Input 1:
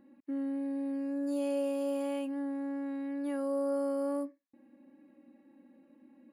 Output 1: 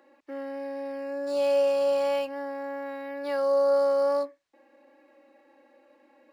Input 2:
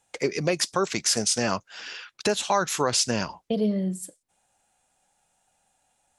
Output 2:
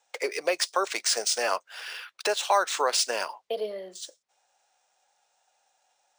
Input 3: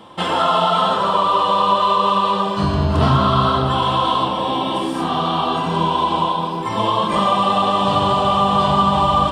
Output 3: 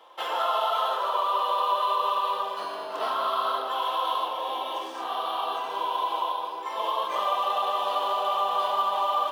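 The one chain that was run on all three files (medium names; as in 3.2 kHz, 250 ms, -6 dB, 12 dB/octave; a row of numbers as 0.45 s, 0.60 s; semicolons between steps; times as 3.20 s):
high-pass 470 Hz 24 dB/octave; decimation joined by straight lines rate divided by 3×; normalise loudness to -27 LUFS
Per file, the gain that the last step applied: +11.5 dB, +1.0 dB, -9.0 dB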